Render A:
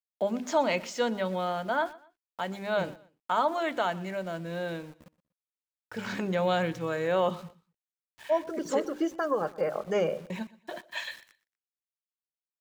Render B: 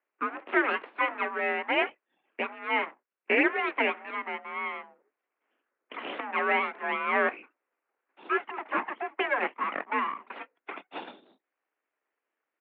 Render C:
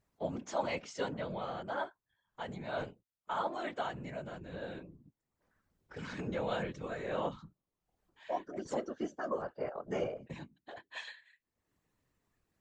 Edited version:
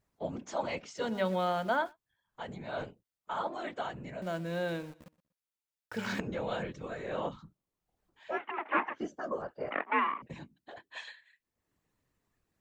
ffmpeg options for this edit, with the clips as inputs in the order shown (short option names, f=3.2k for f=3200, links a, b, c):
-filter_complex "[0:a]asplit=2[a][b];[1:a]asplit=2[c][d];[2:a]asplit=5[e][f][g][h][i];[e]atrim=end=1.19[j];[a]atrim=start=0.95:end=1.97[k];[f]atrim=start=1.73:end=4.222[l];[b]atrim=start=4.218:end=6.202[m];[g]atrim=start=6.198:end=8.46[n];[c]atrim=start=8.3:end=9.02[o];[h]atrim=start=8.86:end=9.712[p];[d]atrim=start=9.708:end=10.222[q];[i]atrim=start=10.218[r];[j][k]acrossfade=d=0.24:c1=tri:c2=tri[s];[s][l]acrossfade=d=0.24:c1=tri:c2=tri[t];[t][m]acrossfade=d=0.004:c1=hsin:c2=hsin[u];[u][n]acrossfade=d=0.004:c1=hsin:c2=hsin[v];[v][o]acrossfade=d=0.16:c1=tri:c2=tri[w];[w][p]acrossfade=d=0.16:c1=tri:c2=tri[x];[x][q]acrossfade=d=0.004:c1=hsin:c2=hsin[y];[y][r]acrossfade=d=0.004:c1=hsin:c2=hsin"